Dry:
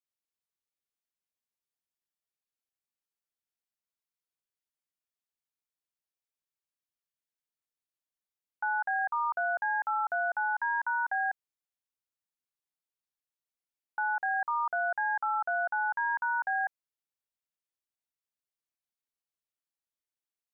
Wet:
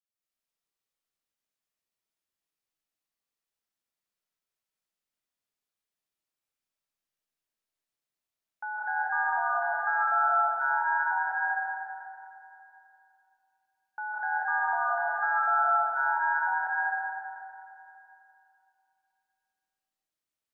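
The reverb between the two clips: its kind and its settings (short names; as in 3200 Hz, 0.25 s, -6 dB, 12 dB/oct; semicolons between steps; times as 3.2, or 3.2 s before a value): digital reverb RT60 2.8 s, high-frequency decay 0.85×, pre-delay 0.115 s, DRR -9.5 dB; gain -5.5 dB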